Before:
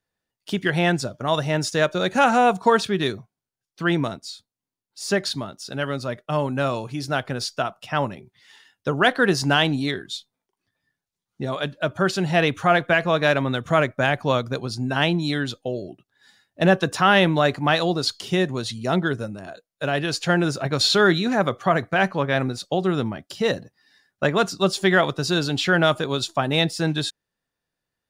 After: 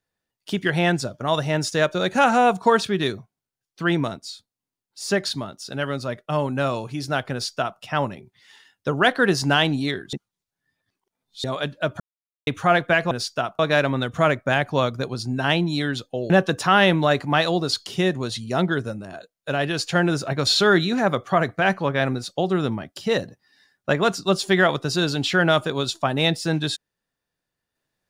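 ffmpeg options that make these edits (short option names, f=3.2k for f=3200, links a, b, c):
-filter_complex "[0:a]asplit=8[a][b][c][d][e][f][g][h];[a]atrim=end=10.132[i];[b]atrim=start=10.128:end=11.442,asetpts=PTS-STARTPTS,areverse[j];[c]atrim=start=11.438:end=12,asetpts=PTS-STARTPTS,afade=t=out:st=0.558:d=0.004:c=hsin[k];[d]atrim=start=12:end=12.47,asetpts=PTS-STARTPTS,volume=0[l];[e]atrim=start=12.47:end=13.112,asetpts=PTS-STARTPTS,afade=t=in:d=0.004:c=hsin[m];[f]atrim=start=7.318:end=7.802[n];[g]atrim=start=13.108:end=15.822[o];[h]atrim=start=16.638[p];[i][j]acrossfade=d=0.004:c1=hsin:c2=hsin[q];[k][l][m]concat=n=3:v=0:a=1[r];[q][r]acrossfade=d=0.004:c1=hsin:c2=hsin[s];[s][n]acrossfade=d=0.004:c1=hsin:c2=hsin[t];[t][o]acrossfade=d=0.004:c1=hsin:c2=hsin[u];[u][p]acrossfade=d=0.004:c1=hsin:c2=hsin"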